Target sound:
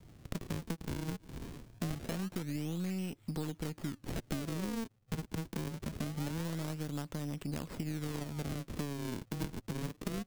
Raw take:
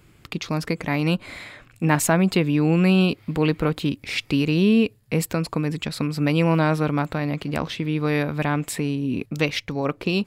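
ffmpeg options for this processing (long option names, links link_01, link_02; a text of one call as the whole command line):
ffmpeg -i in.wav -filter_complex "[0:a]highshelf=frequency=4200:gain=-5.5,acrusher=samples=39:mix=1:aa=0.000001:lfo=1:lforange=62.4:lforate=0.24,acrossover=split=350|3500[link_01][link_02][link_03];[link_02]aeval=exprs='max(val(0),0)':channel_layout=same[link_04];[link_01][link_04][link_03]amix=inputs=3:normalize=0,acompressor=threshold=-32dB:ratio=10,volume=-2dB" out.wav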